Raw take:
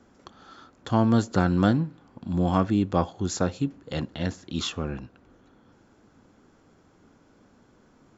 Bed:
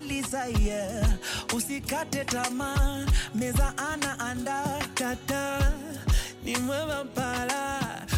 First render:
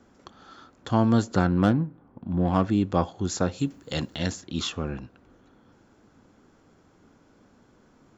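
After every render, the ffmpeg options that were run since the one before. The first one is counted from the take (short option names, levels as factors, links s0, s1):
-filter_complex "[0:a]asplit=3[s0][s1][s2];[s0]afade=t=out:st=1.46:d=0.02[s3];[s1]adynamicsmooth=sensitivity=2:basefreq=1400,afade=t=in:st=1.46:d=0.02,afade=t=out:st=2.62:d=0.02[s4];[s2]afade=t=in:st=2.62:d=0.02[s5];[s3][s4][s5]amix=inputs=3:normalize=0,asplit=3[s6][s7][s8];[s6]afade=t=out:st=3.57:d=0.02[s9];[s7]aemphasis=mode=production:type=75kf,afade=t=in:st=3.57:d=0.02,afade=t=out:st=4.4:d=0.02[s10];[s8]afade=t=in:st=4.4:d=0.02[s11];[s9][s10][s11]amix=inputs=3:normalize=0"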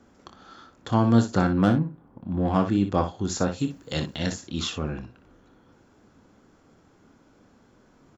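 -af "aecho=1:1:26|60:0.299|0.335"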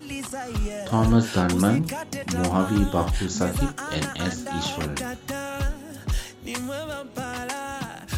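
-filter_complex "[1:a]volume=0.794[s0];[0:a][s0]amix=inputs=2:normalize=0"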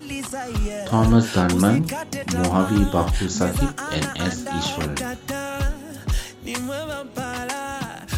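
-af "volume=1.41"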